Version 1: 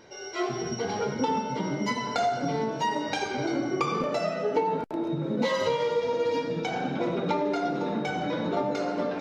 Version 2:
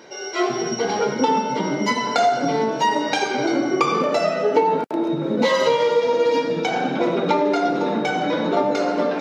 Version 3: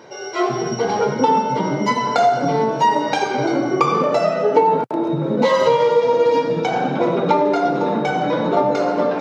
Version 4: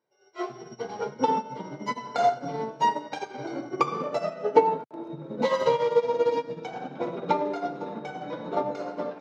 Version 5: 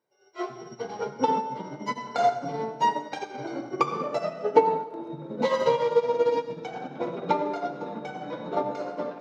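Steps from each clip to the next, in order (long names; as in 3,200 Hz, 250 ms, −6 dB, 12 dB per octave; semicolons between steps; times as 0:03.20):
high-pass filter 210 Hz 12 dB per octave; level +8.5 dB
graphic EQ with 10 bands 125 Hz +12 dB, 500 Hz +4 dB, 1,000 Hz +6 dB; level −2.5 dB
expander for the loud parts 2.5 to 1, over −34 dBFS; level −2 dB
convolution reverb RT60 1.2 s, pre-delay 73 ms, DRR 13.5 dB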